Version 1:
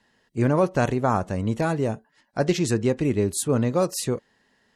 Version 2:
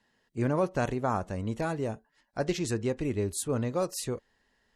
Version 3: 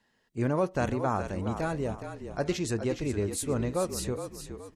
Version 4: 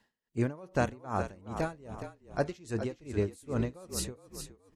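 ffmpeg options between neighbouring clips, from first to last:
-af "asubboost=boost=6:cutoff=63,volume=-6.5dB"
-filter_complex "[0:a]asplit=5[a][b][c][d][e];[b]adelay=417,afreqshift=-41,volume=-9dB[f];[c]adelay=834,afreqshift=-82,volume=-17.2dB[g];[d]adelay=1251,afreqshift=-123,volume=-25.4dB[h];[e]adelay=1668,afreqshift=-164,volume=-33.5dB[i];[a][f][g][h][i]amix=inputs=5:normalize=0"
-af "aeval=exprs='val(0)*pow(10,-24*(0.5-0.5*cos(2*PI*2.5*n/s))/20)':c=same,volume=1.5dB"

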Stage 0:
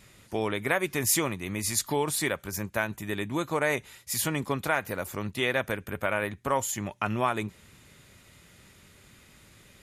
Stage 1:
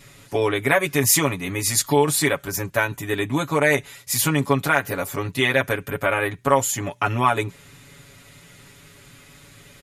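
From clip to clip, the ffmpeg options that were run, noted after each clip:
-af "aecho=1:1:7.1:0.93,volume=5dB"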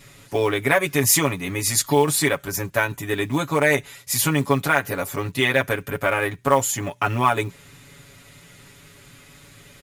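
-af "acrusher=bits=7:mode=log:mix=0:aa=0.000001"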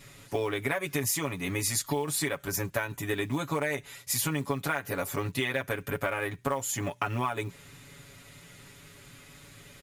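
-af "acompressor=threshold=-22dB:ratio=12,volume=-3.5dB"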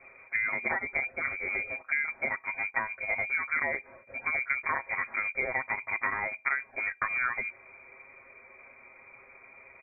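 -af "lowpass=f=2.1k:t=q:w=0.5098,lowpass=f=2.1k:t=q:w=0.6013,lowpass=f=2.1k:t=q:w=0.9,lowpass=f=2.1k:t=q:w=2.563,afreqshift=-2500"

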